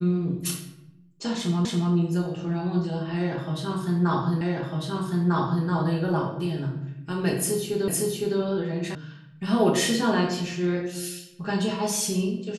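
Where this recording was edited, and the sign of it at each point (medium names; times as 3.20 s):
1.65 s: repeat of the last 0.28 s
4.41 s: repeat of the last 1.25 s
7.88 s: repeat of the last 0.51 s
8.95 s: sound stops dead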